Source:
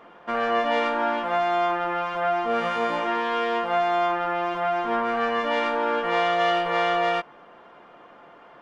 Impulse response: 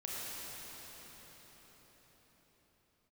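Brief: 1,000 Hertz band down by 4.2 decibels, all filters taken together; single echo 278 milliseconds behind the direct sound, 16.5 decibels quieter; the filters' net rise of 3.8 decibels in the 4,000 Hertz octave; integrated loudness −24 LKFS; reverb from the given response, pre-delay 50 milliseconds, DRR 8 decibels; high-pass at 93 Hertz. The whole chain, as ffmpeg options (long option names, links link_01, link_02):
-filter_complex "[0:a]highpass=93,equalizer=frequency=1000:width_type=o:gain=-7,equalizer=frequency=4000:width_type=o:gain=6.5,aecho=1:1:278:0.15,asplit=2[link_01][link_02];[1:a]atrim=start_sample=2205,adelay=50[link_03];[link_02][link_03]afir=irnorm=-1:irlink=0,volume=-10.5dB[link_04];[link_01][link_04]amix=inputs=2:normalize=0,volume=1dB"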